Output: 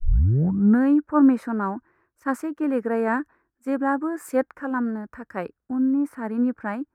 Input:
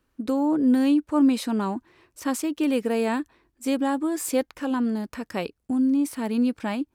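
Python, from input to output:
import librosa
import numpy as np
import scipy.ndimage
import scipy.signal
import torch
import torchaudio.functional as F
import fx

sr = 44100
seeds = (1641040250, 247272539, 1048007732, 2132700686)

y = fx.tape_start_head(x, sr, length_s=0.82)
y = fx.high_shelf_res(y, sr, hz=2300.0, db=-14.0, q=3.0)
y = fx.band_widen(y, sr, depth_pct=70)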